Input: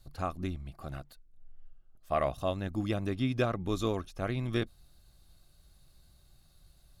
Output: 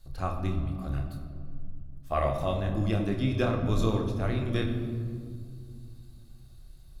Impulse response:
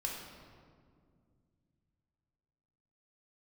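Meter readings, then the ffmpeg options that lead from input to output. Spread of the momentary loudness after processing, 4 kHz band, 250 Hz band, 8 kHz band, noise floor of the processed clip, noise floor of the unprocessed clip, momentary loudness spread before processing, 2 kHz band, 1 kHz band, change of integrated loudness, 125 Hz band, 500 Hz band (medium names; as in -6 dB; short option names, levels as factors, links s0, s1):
18 LU, +1.5 dB, +4.0 dB, +1.5 dB, -49 dBFS, -63 dBFS, 12 LU, +2.0 dB, +2.5 dB, +3.5 dB, +7.0 dB, +2.5 dB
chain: -filter_complex "[0:a]asplit=2[s0][s1];[s1]lowshelf=f=250:g=8.5[s2];[1:a]atrim=start_sample=2205,adelay=27[s3];[s2][s3]afir=irnorm=-1:irlink=0,volume=0.596[s4];[s0][s4]amix=inputs=2:normalize=0"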